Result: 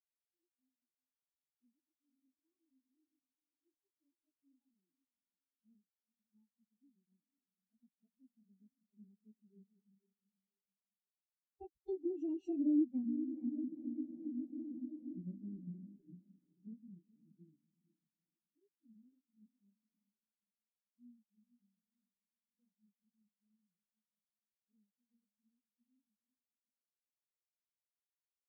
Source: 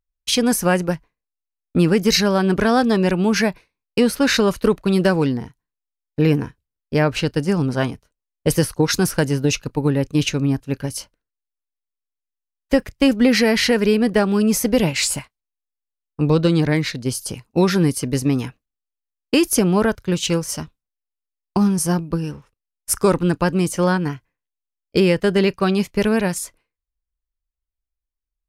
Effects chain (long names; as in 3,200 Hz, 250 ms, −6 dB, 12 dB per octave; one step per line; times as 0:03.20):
phase-vocoder pitch shift without resampling +4.5 semitones
source passing by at 0:12.83, 30 m/s, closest 2.2 metres
in parallel at −4 dB: bit reduction 7 bits
on the sum: low shelf with overshoot 370 Hz +8 dB, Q 1.5
on a send: feedback delay with all-pass diffusion 464 ms, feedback 53%, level −7 dB
on the sum: downward compressor 10 to 1, threshold −34 dBFS, peak gain reduction 29 dB
every bin expanded away from the loudest bin 2.5 to 1
level +2.5 dB